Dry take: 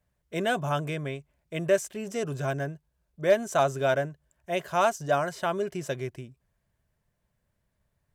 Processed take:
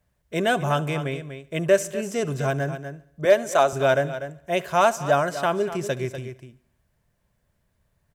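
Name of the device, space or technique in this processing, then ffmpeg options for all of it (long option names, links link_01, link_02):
ducked delay: -filter_complex "[0:a]asettb=1/sr,asplit=3[link_01][link_02][link_03];[link_01]atrim=end=3.254[link_04];[link_02]atrim=start=3.25:end=3.73,asetpts=PTS-STARTPTS,afade=type=in:duration=0.004:curve=qsin,afade=type=out:start_time=0.476:duration=0.004:curve=qsin,highpass=280[link_05];[link_03]atrim=start=3.726[link_06];[link_04][link_05]acrossfade=duration=0.004:curve1=hsin:curve2=qsin[link_07];[link_07][link_06]acrossfade=duration=0.004:curve1=qsin:curve2=hsin,asplit=3[link_08][link_09][link_10];[link_09]adelay=244,volume=-8.5dB[link_11];[link_10]apad=whole_len=369933[link_12];[link_11][link_12]sidechaincompress=threshold=-30dB:ratio=8:attack=16:release=414[link_13];[link_08][link_13]amix=inputs=2:normalize=0,aecho=1:1:71|142|213|284:0.0944|0.0538|0.0307|0.0175,volume=5dB"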